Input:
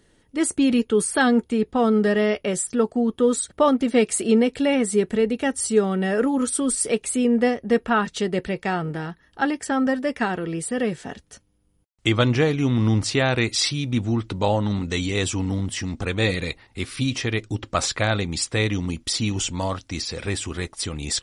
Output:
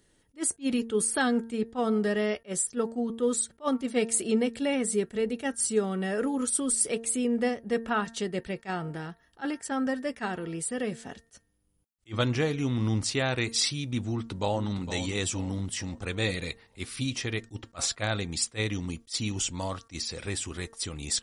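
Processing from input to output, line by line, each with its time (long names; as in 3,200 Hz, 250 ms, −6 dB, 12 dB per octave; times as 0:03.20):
0:14.01–0:14.73: delay throw 460 ms, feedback 45%, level −11 dB
whole clip: high-shelf EQ 6,200 Hz +8.5 dB; hum removal 228.6 Hz, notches 8; level that may rise only so fast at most 390 dB per second; level −7.5 dB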